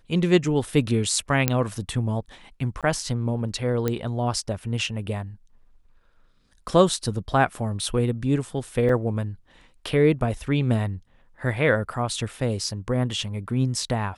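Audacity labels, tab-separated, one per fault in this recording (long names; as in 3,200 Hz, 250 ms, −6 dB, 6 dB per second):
1.480000	1.480000	click −4 dBFS
2.810000	2.830000	drop-out 17 ms
3.880000	3.880000	click −11 dBFS
8.890000	8.890000	drop-out 3.4 ms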